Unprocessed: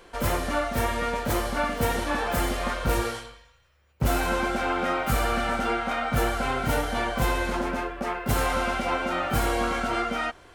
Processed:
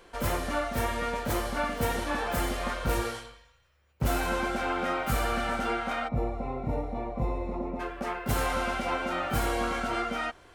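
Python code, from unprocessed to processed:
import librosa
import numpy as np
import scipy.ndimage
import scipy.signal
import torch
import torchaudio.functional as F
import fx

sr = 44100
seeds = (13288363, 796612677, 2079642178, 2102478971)

y = fx.moving_average(x, sr, points=28, at=(6.07, 7.79), fade=0.02)
y = F.gain(torch.from_numpy(y), -3.5).numpy()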